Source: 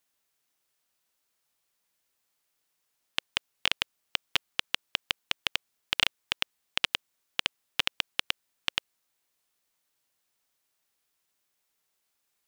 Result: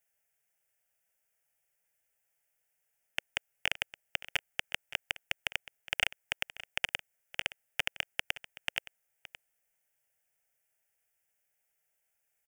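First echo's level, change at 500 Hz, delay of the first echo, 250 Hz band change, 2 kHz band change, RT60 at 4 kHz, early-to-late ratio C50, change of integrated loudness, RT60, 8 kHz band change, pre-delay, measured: -16.5 dB, -1.5 dB, 0.569 s, -10.0 dB, -1.5 dB, none, none, -4.5 dB, none, -4.0 dB, none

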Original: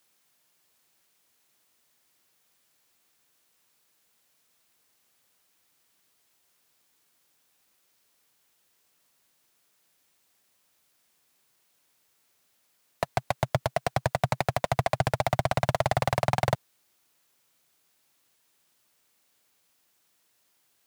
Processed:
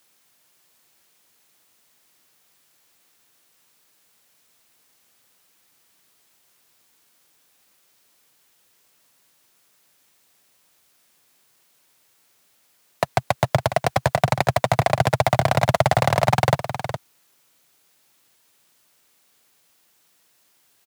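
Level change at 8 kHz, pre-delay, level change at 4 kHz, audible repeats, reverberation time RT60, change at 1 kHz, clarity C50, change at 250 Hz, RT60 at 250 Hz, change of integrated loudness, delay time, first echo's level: +7.5 dB, none, +7.5 dB, 1, none, +7.5 dB, none, +7.5 dB, none, +7.0 dB, 0.413 s, -10.0 dB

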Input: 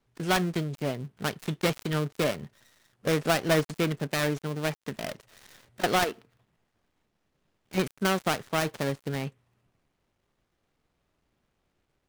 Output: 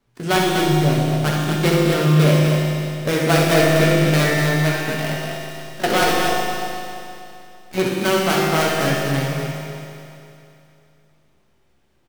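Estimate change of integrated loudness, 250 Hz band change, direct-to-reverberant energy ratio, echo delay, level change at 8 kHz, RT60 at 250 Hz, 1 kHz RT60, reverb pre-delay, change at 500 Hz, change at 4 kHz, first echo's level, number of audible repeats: +11.0 dB, +11.5 dB, -5.5 dB, 65 ms, +10.5 dB, 2.8 s, 2.8 s, 6 ms, +10.5 dB, +10.5 dB, -6.0 dB, 2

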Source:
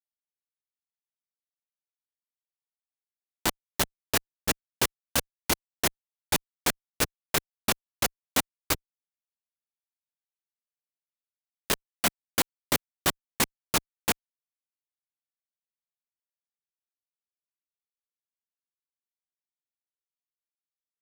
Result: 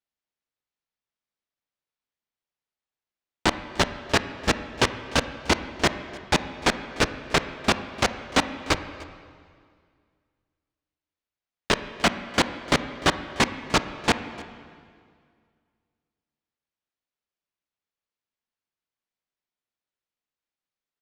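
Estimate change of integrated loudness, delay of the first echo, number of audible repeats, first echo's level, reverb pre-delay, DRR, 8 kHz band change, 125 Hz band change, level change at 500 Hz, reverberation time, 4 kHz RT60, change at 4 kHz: +3.5 dB, 0.299 s, 1, -21.5 dB, 23 ms, 10.0 dB, -3.5 dB, +8.0 dB, +7.5 dB, 2.0 s, 1.9 s, +4.0 dB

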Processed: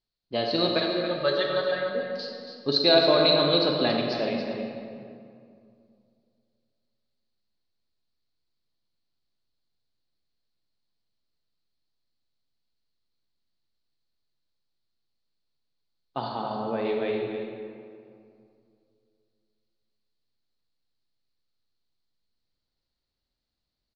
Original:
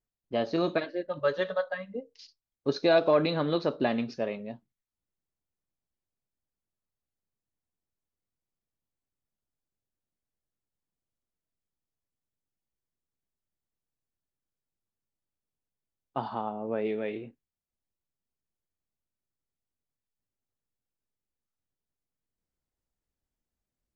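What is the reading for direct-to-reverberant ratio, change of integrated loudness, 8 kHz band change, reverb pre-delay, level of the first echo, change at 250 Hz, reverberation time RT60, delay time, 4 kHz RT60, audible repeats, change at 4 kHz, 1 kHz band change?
0.5 dB, +4.5 dB, n/a, 35 ms, -9.0 dB, +3.0 dB, 2.3 s, 0.28 s, 1.4 s, 1, +15.5 dB, +3.5 dB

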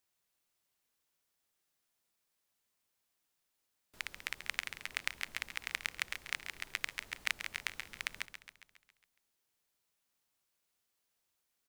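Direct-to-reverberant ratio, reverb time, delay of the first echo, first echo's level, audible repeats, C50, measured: none, none, 0.137 s, -10.5 dB, 6, none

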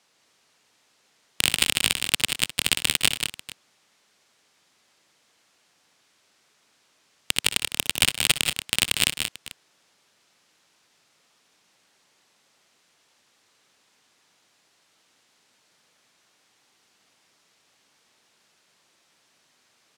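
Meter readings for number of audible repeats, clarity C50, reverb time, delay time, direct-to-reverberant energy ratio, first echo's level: 3, none, none, 60 ms, none, -15.5 dB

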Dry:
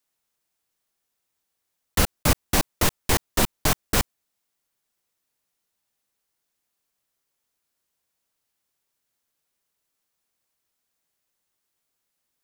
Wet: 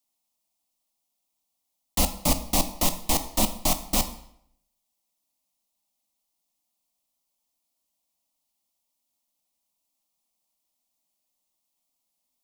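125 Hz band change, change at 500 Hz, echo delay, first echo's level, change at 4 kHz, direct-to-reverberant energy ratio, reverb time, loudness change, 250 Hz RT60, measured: -6.0 dB, -3.5 dB, none, none, -1.5 dB, 9.0 dB, 0.70 s, -1.5 dB, 0.70 s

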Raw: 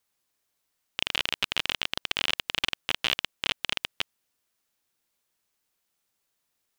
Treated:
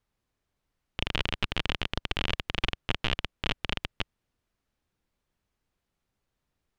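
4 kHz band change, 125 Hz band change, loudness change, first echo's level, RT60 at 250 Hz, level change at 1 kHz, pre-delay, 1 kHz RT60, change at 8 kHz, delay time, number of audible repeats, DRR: -5.0 dB, +12.5 dB, -3.5 dB, none, none, 0.0 dB, none, none, -10.5 dB, none, none, none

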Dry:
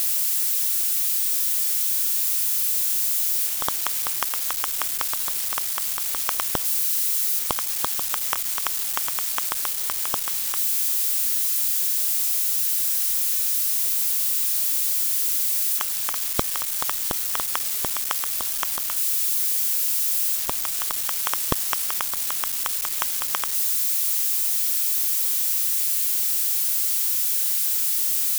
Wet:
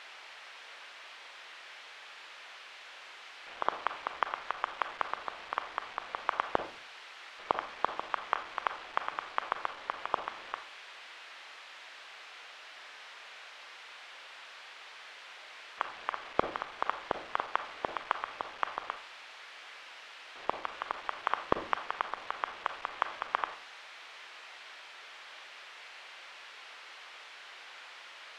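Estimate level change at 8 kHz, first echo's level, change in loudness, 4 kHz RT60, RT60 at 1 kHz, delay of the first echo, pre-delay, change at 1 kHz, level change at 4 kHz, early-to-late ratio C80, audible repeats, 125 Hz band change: -37.5 dB, none, -19.0 dB, 0.40 s, 0.45 s, none, 30 ms, -0.5 dB, -15.0 dB, 16.0 dB, none, -13.0 dB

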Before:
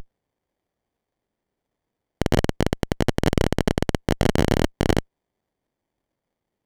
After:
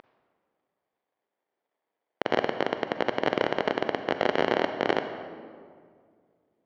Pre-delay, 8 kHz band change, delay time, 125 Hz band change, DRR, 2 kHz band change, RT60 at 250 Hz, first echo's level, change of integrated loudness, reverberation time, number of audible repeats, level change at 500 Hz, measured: 36 ms, under -15 dB, none, -20.5 dB, 8.0 dB, 0.0 dB, 2.4 s, none, -5.0 dB, 2.0 s, none, -1.5 dB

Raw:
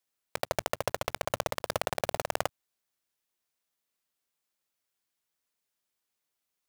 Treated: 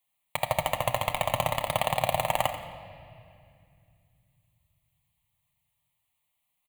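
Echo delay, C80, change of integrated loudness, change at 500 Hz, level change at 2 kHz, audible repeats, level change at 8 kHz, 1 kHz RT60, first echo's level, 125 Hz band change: 87 ms, 7.5 dB, +5.0 dB, +3.0 dB, +4.0 dB, 1, +1.5 dB, 2.1 s, -11.5 dB, +8.5 dB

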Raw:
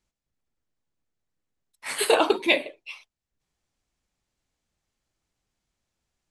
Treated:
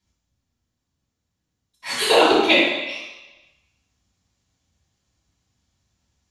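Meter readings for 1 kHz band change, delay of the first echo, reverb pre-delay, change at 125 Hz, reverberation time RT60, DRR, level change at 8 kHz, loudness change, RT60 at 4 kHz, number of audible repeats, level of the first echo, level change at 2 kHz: +7.0 dB, none, 3 ms, n/a, 1.0 s, -6.0 dB, +2.0 dB, +5.5 dB, 1.1 s, none, none, +6.5 dB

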